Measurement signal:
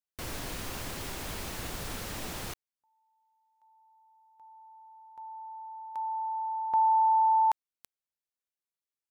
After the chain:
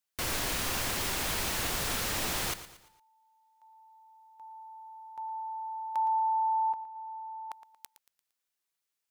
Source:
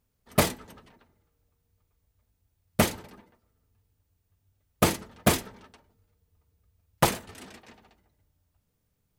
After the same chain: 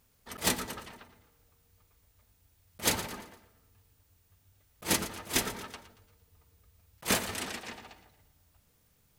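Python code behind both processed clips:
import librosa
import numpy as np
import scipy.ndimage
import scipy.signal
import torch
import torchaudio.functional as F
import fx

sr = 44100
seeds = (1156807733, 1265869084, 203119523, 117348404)

y = fx.tilt_shelf(x, sr, db=-3.5, hz=670.0)
y = fx.over_compress(y, sr, threshold_db=-30.0, ratio=-0.5)
y = fx.echo_feedback(y, sr, ms=115, feedback_pct=41, wet_db=-13.5)
y = y * librosa.db_to_amplitude(1.0)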